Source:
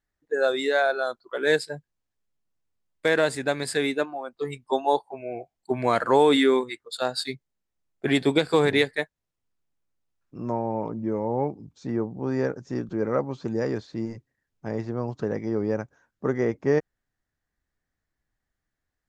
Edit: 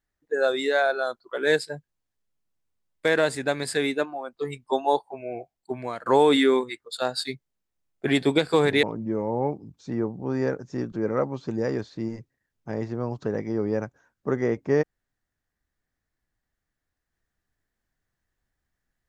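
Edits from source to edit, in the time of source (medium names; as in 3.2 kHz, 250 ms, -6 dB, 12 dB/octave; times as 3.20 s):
5.38–6.06 s: fade out, to -19 dB
8.83–10.80 s: delete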